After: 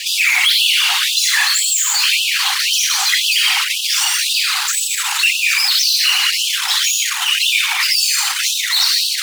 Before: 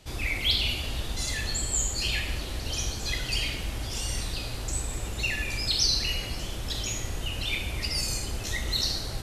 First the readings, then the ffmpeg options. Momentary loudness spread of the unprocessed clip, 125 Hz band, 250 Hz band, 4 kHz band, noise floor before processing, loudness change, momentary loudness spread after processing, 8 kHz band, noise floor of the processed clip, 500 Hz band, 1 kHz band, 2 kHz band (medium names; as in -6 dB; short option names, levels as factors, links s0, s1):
9 LU, under -40 dB, under -40 dB, +16.0 dB, -35 dBFS, +15.5 dB, 3 LU, +16.0 dB, -21 dBFS, under -10 dB, +16.5 dB, +17.5 dB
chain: -filter_complex "[0:a]asubboost=boost=11.5:cutoff=85,asplit=2[s0][s1];[s1]highpass=f=720:p=1,volume=178,asoftclip=type=tanh:threshold=0.708[s2];[s0][s2]amix=inputs=2:normalize=0,lowpass=f=5400:p=1,volume=0.501,afftfilt=real='hypot(re,im)*cos(2*PI*random(0))':imag='hypot(re,im)*sin(2*PI*random(1))':win_size=512:overlap=0.75,asplit=2[s3][s4];[s4]acrusher=bits=4:mix=0:aa=0.000001,volume=0.562[s5];[s3][s5]amix=inputs=2:normalize=0,asoftclip=type=tanh:threshold=0.841,afftfilt=real='re*gte(b*sr/1024,710*pow(2600/710,0.5+0.5*sin(2*PI*1.9*pts/sr)))':imag='im*gte(b*sr/1024,710*pow(2600/710,0.5+0.5*sin(2*PI*1.9*pts/sr)))':win_size=1024:overlap=0.75"